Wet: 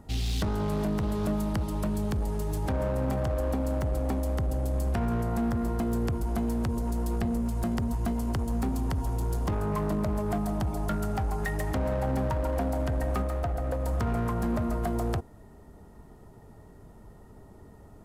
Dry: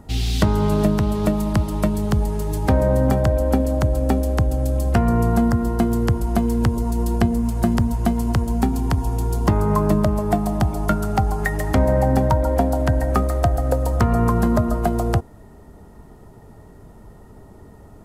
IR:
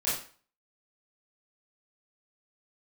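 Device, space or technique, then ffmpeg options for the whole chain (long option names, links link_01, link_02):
limiter into clipper: -filter_complex "[0:a]alimiter=limit=-13dB:level=0:latency=1:release=19,asoftclip=type=hard:threshold=-17.5dB,asettb=1/sr,asplit=3[link_01][link_02][link_03];[link_01]atrim=end=13.224[link_04];[link_02]atrim=start=13.22:end=13.86,asetpts=PTS-STARTPTS,afade=type=in:duration=0.004:curve=qsin,afade=type=out:start_time=0.636:duration=0.004:curve=qsin,bass=frequency=250:gain=-2,treble=frequency=4000:gain=-6[link_05];[link_03]atrim=start=13.856[link_06];[link_04][link_05]acrossfade=duration=0.004:curve1=hsin:curve2=qsin[link_07];[link_07][link_06]acrossfade=duration=0.004:curve1=qsin:curve2=hsin,volume=-6.5dB"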